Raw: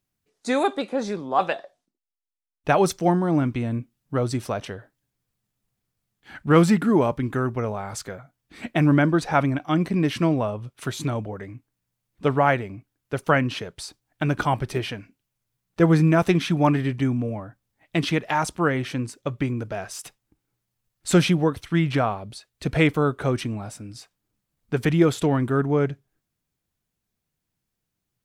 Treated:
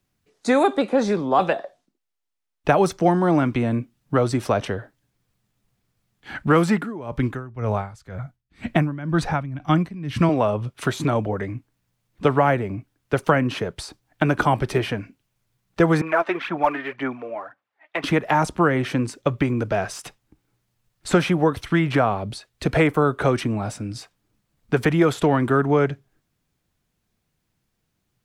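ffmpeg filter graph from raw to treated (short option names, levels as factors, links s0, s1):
-filter_complex "[0:a]asettb=1/sr,asplit=3[s0][s1][s2];[s0]atrim=end=6.744[s3];[s1]atrim=start=6.74:end=10.29,asetpts=PTS-STARTPTS,afade=t=in:d=0.004:c=qsin,afade=t=out:st=3.546:d=0.004:c=qsin,asubboost=boost=8:cutoff=160,aeval=exprs='val(0)*pow(10,-24*(0.5-0.5*cos(2*PI*2*n/s))/20)':c=same[s4];[s2]atrim=start=10.286[s5];[s3][s4]acrossfade=d=0.004:c1=hsin:c2=qsin[s6];[s6][s5]acrossfade=d=0.004:c1=qsin:c2=hsin,asettb=1/sr,asplit=3[s7][s8][s9];[s7]atrim=end=16.014[s10];[s8]atrim=start=16.01:end=18.04,asetpts=PTS-STARTPTS,afade=t=in:d=0.004:c=qsin,afade=t=out:st=2.026:d=0.004:c=qsin,highpass=790,lowpass=2100,aphaser=in_gain=1:out_gain=1:delay=3.3:decay=0.53:speed=1.9:type=sinusoidal[s11];[s9]atrim=start=18.036[s12];[s10][s11]acrossfade=d=0.004:c1=hsin:c2=qsin[s13];[s13][s12]acrossfade=d=0.004:c1=qsin:c2=hsin,acrossover=split=260|540|1900|7600[s14][s15][s16][s17][s18];[s14]acompressor=threshold=0.0224:ratio=4[s19];[s15]acompressor=threshold=0.0282:ratio=4[s20];[s16]acompressor=threshold=0.0398:ratio=4[s21];[s17]acompressor=threshold=0.00708:ratio=4[s22];[s18]acompressor=threshold=0.00501:ratio=4[s23];[s19][s20][s21][s22][s23]amix=inputs=5:normalize=0,highshelf=f=6700:g=-7,volume=2.66"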